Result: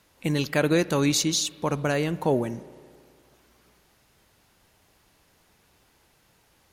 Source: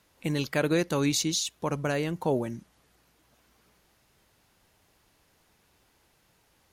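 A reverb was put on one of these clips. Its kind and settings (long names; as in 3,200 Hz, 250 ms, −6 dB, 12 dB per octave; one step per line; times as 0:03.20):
spring reverb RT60 2.1 s, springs 33/55 ms, chirp 75 ms, DRR 17.5 dB
level +3.5 dB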